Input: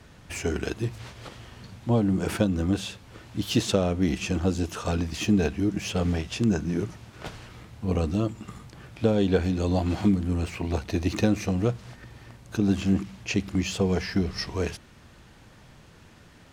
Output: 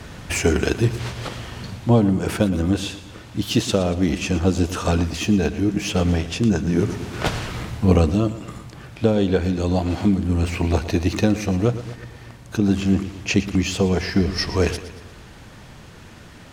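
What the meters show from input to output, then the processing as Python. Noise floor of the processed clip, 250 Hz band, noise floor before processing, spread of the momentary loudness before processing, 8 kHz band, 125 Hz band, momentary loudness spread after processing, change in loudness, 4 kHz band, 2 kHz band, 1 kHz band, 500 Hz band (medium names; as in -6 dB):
-42 dBFS, +5.5 dB, -52 dBFS, 18 LU, +6.5 dB, +6.5 dB, 13 LU, +5.5 dB, +6.0 dB, +7.0 dB, +6.5 dB, +6.0 dB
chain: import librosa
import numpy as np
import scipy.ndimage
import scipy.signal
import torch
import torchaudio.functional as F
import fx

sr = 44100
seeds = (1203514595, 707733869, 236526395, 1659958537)

y = fx.echo_feedback(x, sr, ms=116, feedback_pct=50, wet_db=-14.0)
y = fx.rider(y, sr, range_db=10, speed_s=0.5)
y = F.gain(torch.from_numpy(y), 5.5).numpy()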